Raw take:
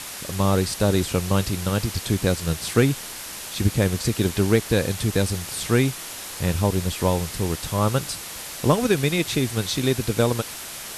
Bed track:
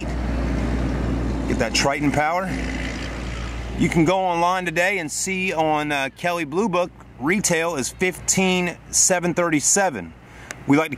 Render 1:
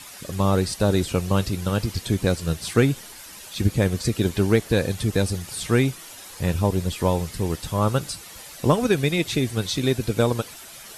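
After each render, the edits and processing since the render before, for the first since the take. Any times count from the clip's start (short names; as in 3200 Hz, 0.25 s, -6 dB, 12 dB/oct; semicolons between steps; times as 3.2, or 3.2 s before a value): denoiser 10 dB, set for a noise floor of -36 dBFS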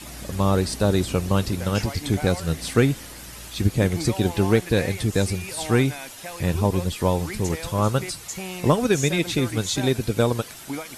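add bed track -15 dB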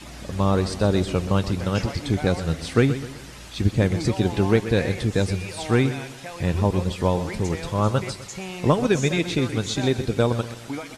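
air absorption 61 m; feedback echo 0.127 s, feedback 42%, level -13 dB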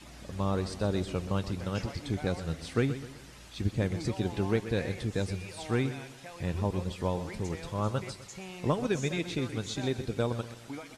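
gain -9.5 dB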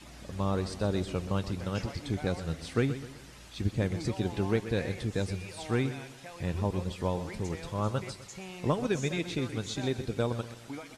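nothing audible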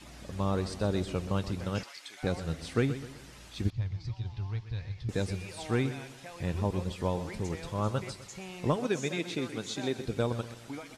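1.83–2.23 HPF 1400 Hz; 3.7–5.09 EQ curve 120 Hz 0 dB, 200 Hz -20 dB, 520 Hz -23 dB, 970 Hz -10 dB, 1500 Hz -15 dB, 5100 Hz -7 dB, 8500 Hz -27 dB; 8.76–10.06 HPF 180 Hz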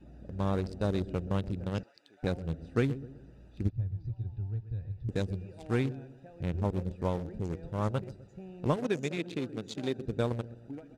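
Wiener smoothing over 41 samples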